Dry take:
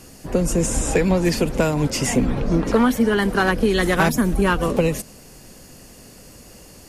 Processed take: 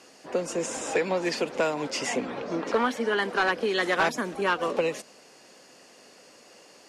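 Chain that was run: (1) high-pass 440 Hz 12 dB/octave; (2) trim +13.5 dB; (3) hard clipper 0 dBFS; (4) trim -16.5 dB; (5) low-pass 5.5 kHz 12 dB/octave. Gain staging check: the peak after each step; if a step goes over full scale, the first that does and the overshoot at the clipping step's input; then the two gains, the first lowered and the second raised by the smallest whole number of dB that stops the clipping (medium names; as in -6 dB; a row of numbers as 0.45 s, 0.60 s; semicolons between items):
-5.5 dBFS, +8.0 dBFS, 0.0 dBFS, -16.5 dBFS, -16.0 dBFS; step 2, 8.0 dB; step 2 +5.5 dB, step 4 -8.5 dB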